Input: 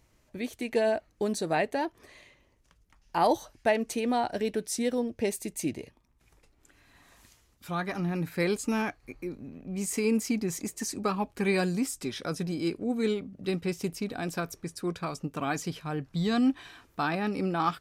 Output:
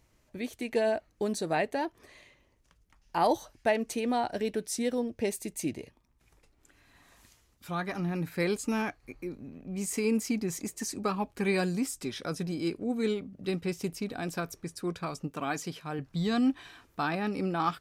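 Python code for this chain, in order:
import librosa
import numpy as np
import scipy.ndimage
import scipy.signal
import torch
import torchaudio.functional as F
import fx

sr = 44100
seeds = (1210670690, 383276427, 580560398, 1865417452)

y = fx.highpass(x, sr, hz=170.0, slope=6, at=(15.31, 15.99))
y = y * 10.0 ** (-1.5 / 20.0)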